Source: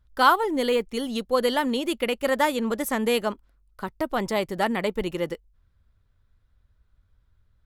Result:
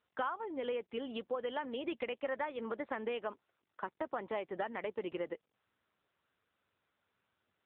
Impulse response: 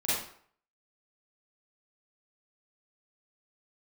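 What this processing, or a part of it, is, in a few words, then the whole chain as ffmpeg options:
voicemail: -af "highpass=350,lowpass=2800,acompressor=threshold=-31dB:ratio=6,volume=-3dB" -ar 8000 -c:a libopencore_amrnb -b:a 7950

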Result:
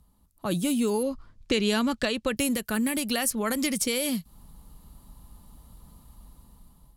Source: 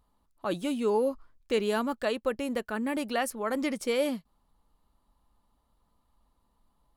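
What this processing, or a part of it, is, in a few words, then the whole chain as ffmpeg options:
FM broadcast chain: -filter_complex "[0:a]equalizer=frequency=160:width=1.5:gain=6,asettb=1/sr,asplit=3[link_01][link_02][link_03];[link_01]atrim=end=1.034[link_04];[link_02]atrim=start=1.03:end=2.37,asetpts=PTS-STARTPTS,afade=type=in:duration=0.004:curve=qsin,afade=type=out:start_time=1.336:duration=0.004:curve=qsin,lowpass=5000[link_05];[link_03]atrim=start=2.366[link_06];[link_04][link_05]acrossfade=duration=0.004:curve1=hsin:curve2=qsin[link_07];[link_07][link_06]acrossfade=duration=0.004:curve1=qsin:curve2=hsin,highpass=frequency=62:poles=1,dynaudnorm=framelen=530:gausssize=5:maxgain=13dB,acrossover=split=89|1800|7300[link_08][link_09][link_10][link_11];[link_08]acompressor=threshold=-60dB:ratio=4[link_12];[link_09]acompressor=threshold=-28dB:ratio=4[link_13];[link_10]acompressor=threshold=-28dB:ratio=4[link_14];[link_11]acompressor=threshold=-39dB:ratio=4[link_15];[link_12][link_13][link_14][link_15]amix=inputs=4:normalize=0,aemphasis=mode=production:type=75fm,alimiter=limit=-14dB:level=0:latency=1:release=399,asoftclip=type=hard:threshold=-15.5dB,lowpass=frequency=15000:width=0.5412,lowpass=frequency=15000:width=1.3066,aemphasis=mode=production:type=75fm,aemphasis=mode=reproduction:type=riaa"

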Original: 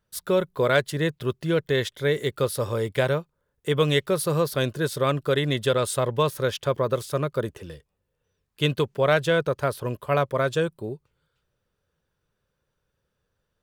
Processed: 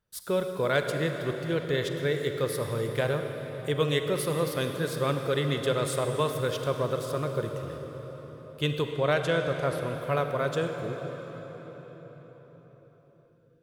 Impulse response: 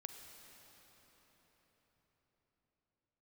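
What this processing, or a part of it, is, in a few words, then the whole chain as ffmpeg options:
cathedral: -filter_complex "[1:a]atrim=start_sample=2205[link_01];[0:a][link_01]afir=irnorm=-1:irlink=0,asettb=1/sr,asplit=3[link_02][link_03][link_04];[link_02]atrim=end=8.914[link_05];[link_03]atrim=start=8.91:end=9.97,asetpts=PTS-STARTPTS,afade=type=in:duration=0.004:curve=qsin,afade=type=out:start_time=1.056:duration=0.004:curve=qsin,lowpass=frequency=12000:width=0.5412,lowpass=frequency=12000:width=1.3066[link_06];[link_04]atrim=start=9.966[link_07];[link_05][link_06]acrossfade=duration=0.004:curve1=hsin:curve2=qsin[link_08];[link_08][link_07]acrossfade=duration=0.004:curve1=qsin:curve2=hsin"

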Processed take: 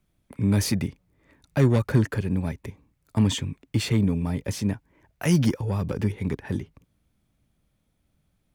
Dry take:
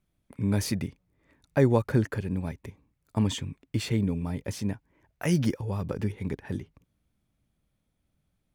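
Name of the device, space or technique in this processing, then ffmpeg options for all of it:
one-band saturation: -filter_complex "[0:a]acrossover=split=270|2100[link_01][link_02][link_03];[link_02]asoftclip=type=tanh:threshold=-30dB[link_04];[link_01][link_04][link_03]amix=inputs=3:normalize=0,volume=5dB"

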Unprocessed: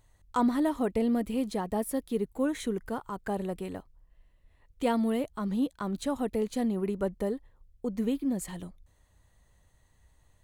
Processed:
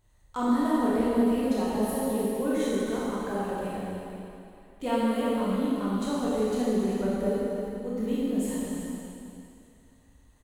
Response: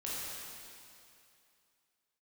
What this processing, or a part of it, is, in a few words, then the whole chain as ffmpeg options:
cave: -filter_complex "[0:a]aecho=1:1:317:0.355[link_01];[1:a]atrim=start_sample=2205[link_02];[link_01][link_02]afir=irnorm=-1:irlink=0"

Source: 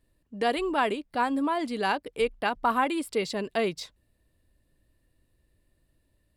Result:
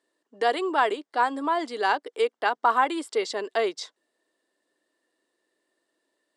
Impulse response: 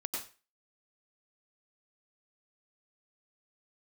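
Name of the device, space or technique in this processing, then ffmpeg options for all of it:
phone speaker on a table: -af "highpass=frequency=360:width=0.5412,highpass=frequency=360:width=1.3066,equalizer=frequency=560:width_type=q:width=4:gain=-5,equalizer=frequency=2500:width_type=q:width=4:gain=-9,equalizer=frequency=4200:width_type=q:width=4:gain=-3,lowpass=frequency=8200:width=0.5412,lowpass=frequency=8200:width=1.3066,volume=4.5dB"

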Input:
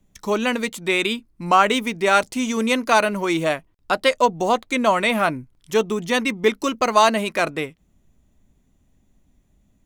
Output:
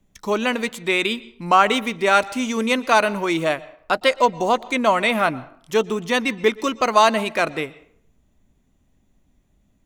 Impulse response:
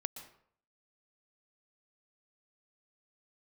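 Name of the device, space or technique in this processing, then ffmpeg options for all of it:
filtered reverb send: -filter_complex "[0:a]asplit=2[link_01][link_02];[link_02]highpass=frequency=360:poles=1,lowpass=6200[link_03];[1:a]atrim=start_sample=2205[link_04];[link_03][link_04]afir=irnorm=-1:irlink=0,volume=-7dB[link_05];[link_01][link_05]amix=inputs=2:normalize=0,volume=-2dB"

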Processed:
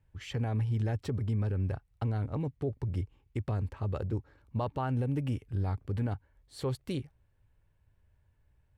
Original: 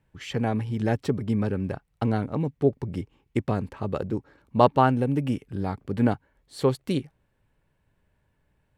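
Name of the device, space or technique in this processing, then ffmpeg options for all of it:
car stereo with a boomy subwoofer: -af "lowshelf=frequency=130:width_type=q:width=1.5:gain=9,alimiter=limit=-16.5dB:level=0:latency=1:release=43,volume=-6.5dB"

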